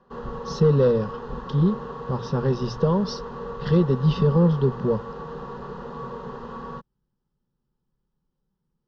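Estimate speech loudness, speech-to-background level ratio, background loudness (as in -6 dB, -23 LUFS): -22.5 LUFS, 13.0 dB, -35.5 LUFS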